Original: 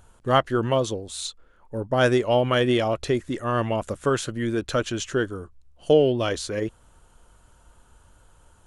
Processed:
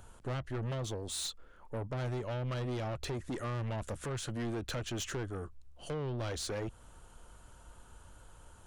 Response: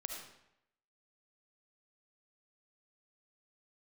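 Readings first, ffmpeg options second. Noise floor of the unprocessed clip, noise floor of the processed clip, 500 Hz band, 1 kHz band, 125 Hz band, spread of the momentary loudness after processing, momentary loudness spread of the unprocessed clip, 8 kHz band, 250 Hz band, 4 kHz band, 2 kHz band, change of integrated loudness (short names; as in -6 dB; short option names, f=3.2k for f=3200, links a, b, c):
-57 dBFS, -57 dBFS, -17.5 dB, -17.0 dB, -7.5 dB, 21 LU, 13 LU, -6.5 dB, -14.5 dB, -11.5 dB, -15.5 dB, -14.0 dB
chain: -filter_complex "[0:a]acrossover=split=150[a][b];[b]acompressor=threshold=-29dB:ratio=12[c];[a][c]amix=inputs=2:normalize=0,asoftclip=type=tanh:threshold=-33dB"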